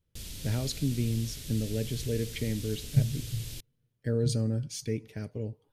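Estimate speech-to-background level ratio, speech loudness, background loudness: 9.0 dB, -32.5 LUFS, -41.5 LUFS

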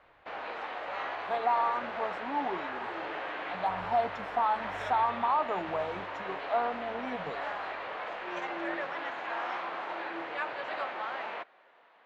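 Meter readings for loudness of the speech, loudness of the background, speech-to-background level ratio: -32.5 LUFS, -37.0 LUFS, 4.5 dB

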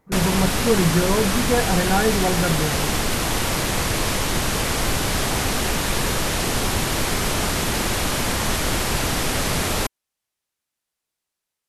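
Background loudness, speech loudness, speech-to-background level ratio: -22.0 LUFS, -22.5 LUFS, -0.5 dB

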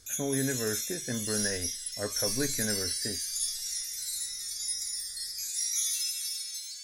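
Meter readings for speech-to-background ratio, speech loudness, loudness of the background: -4.5 dB, -35.5 LUFS, -31.0 LUFS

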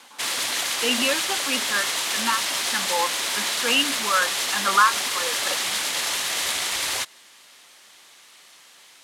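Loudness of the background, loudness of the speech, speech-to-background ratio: -23.5 LUFS, -25.0 LUFS, -1.5 dB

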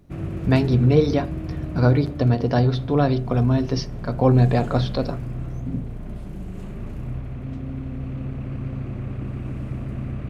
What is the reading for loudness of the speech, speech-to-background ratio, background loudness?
-20.5 LUFS, 11.0 dB, -31.5 LUFS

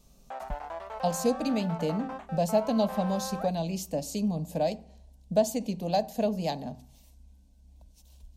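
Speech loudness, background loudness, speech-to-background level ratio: -30.0 LUFS, -39.5 LUFS, 9.5 dB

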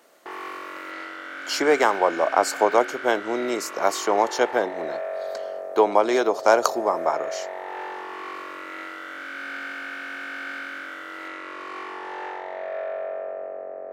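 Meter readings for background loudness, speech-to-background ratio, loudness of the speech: -33.5 LUFS, 11.0 dB, -22.5 LUFS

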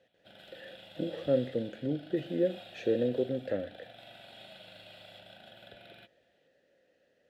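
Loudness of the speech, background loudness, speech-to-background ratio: -33.0 LUFS, -51.0 LUFS, 18.0 dB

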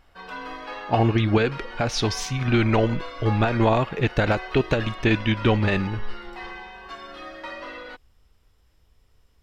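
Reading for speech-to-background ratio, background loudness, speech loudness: 14.0 dB, -37.0 LUFS, -23.0 LUFS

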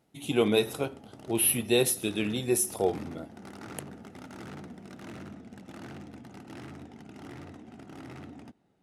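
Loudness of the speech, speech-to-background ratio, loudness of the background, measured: -27.0 LUFS, 19.0 dB, -46.0 LUFS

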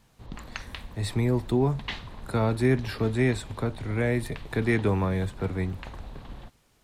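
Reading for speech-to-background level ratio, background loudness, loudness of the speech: 15.5 dB, -43.0 LUFS, -27.5 LUFS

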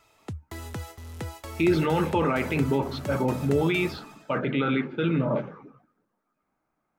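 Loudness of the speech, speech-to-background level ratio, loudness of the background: -26.0 LUFS, 13.0 dB, -39.0 LUFS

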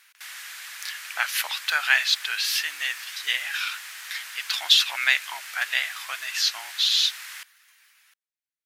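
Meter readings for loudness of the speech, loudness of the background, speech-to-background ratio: -23.5 LUFS, -37.0 LUFS, 13.5 dB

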